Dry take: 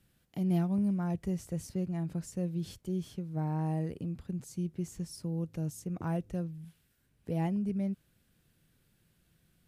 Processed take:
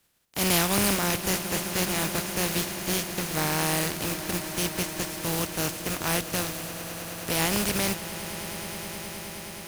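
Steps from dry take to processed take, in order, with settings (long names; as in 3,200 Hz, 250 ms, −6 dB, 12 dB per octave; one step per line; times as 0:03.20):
compressing power law on the bin magnitudes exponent 0.33
leveller curve on the samples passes 1
echo that builds up and dies away 105 ms, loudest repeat 8, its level −17 dB
level +2 dB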